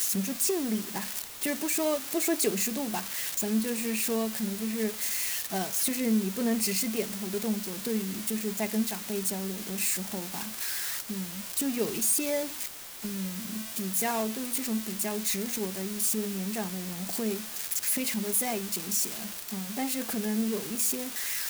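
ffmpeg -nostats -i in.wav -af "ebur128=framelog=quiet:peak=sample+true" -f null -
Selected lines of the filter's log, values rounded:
Integrated loudness:
  I:         -29.2 LUFS
  Threshold: -39.2 LUFS
Loudness range:
  LRA:         2.2 LU
  Threshold: -49.2 LUFS
  LRA low:   -30.4 LUFS
  LRA high:  -28.2 LUFS
Sample peak:
  Peak:      -15.5 dBFS
True peak:
  Peak:      -14.1 dBFS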